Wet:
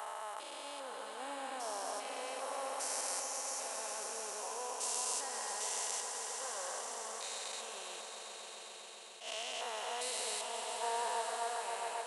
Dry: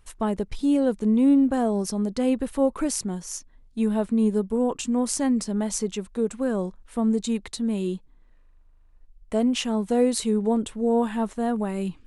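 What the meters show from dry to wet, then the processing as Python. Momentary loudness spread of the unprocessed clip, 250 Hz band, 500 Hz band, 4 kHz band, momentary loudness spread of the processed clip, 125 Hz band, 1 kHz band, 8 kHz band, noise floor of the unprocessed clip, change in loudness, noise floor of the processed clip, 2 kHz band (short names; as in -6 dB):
7 LU, -39.0 dB, -17.0 dB, -4.0 dB, 9 LU, under -40 dB, -5.0 dB, -3.0 dB, -55 dBFS, -14.5 dB, -50 dBFS, -3.5 dB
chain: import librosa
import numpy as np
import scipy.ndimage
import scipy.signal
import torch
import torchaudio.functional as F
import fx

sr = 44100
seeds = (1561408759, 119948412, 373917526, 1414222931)

p1 = fx.spec_steps(x, sr, hold_ms=400)
p2 = scipy.signal.sosfilt(scipy.signal.butter(4, 790.0, 'highpass', fs=sr, output='sos'), p1)
p3 = p2 + fx.echo_swell(p2, sr, ms=134, loudest=5, wet_db=-10.5, dry=0)
p4 = fx.attack_slew(p3, sr, db_per_s=130.0)
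y = p4 * 10.0 ** (1.0 / 20.0)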